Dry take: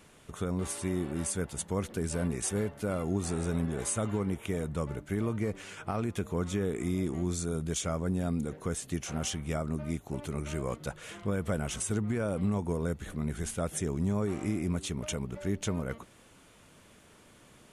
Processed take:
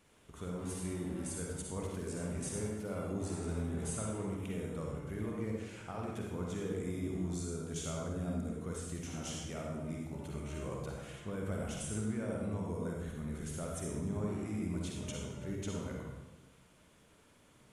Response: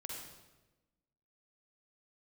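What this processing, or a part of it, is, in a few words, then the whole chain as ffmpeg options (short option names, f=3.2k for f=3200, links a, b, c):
bathroom: -filter_complex "[1:a]atrim=start_sample=2205[a];[0:a][a]afir=irnorm=-1:irlink=0,volume=-5dB"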